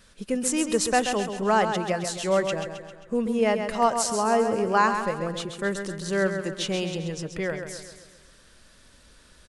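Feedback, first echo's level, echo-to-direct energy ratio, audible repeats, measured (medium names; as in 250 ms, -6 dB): 51%, -7.5 dB, -6.0 dB, 5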